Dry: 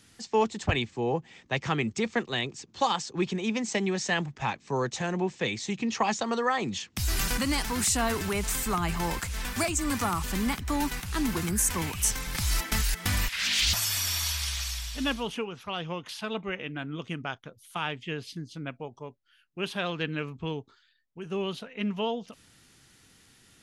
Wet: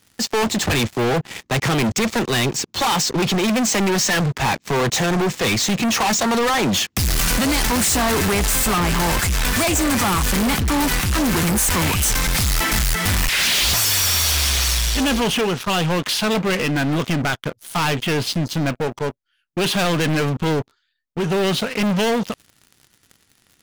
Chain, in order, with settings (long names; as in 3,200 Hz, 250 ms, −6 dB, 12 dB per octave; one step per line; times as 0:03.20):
leveller curve on the samples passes 5
soft clipping −22.5 dBFS, distortion −13 dB
level +5.5 dB